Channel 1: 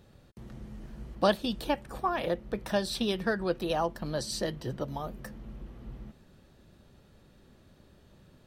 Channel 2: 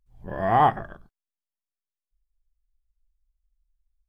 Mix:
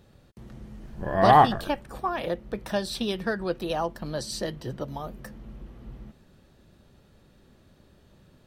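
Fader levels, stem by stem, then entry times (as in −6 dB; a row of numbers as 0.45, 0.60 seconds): +1.0, +2.5 decibels; 0.00, 0.75 seconds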